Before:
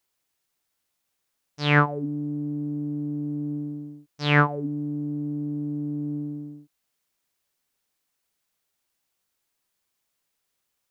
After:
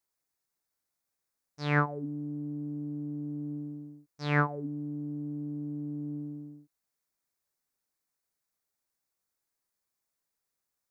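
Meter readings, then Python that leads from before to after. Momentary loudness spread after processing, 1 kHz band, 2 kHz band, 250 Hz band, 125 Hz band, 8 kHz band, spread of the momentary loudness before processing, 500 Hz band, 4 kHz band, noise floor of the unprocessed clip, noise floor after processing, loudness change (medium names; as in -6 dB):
13 LU, -7.5 dB, -8.5 dB, -7.0 dB, -7.0 dB, no reading, 14 LU, -7.0 dB, -14.0 dB, -79 dBFS, under -85 dBFS, -7.5 dB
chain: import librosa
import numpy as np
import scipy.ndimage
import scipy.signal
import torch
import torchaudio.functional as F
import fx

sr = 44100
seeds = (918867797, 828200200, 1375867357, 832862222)

y = fx.peak_eq(x, sr, hz=3000.0, db=-10.5, octaves=0.53)
y = y * 10.0 ** (-7.0 / 20.0)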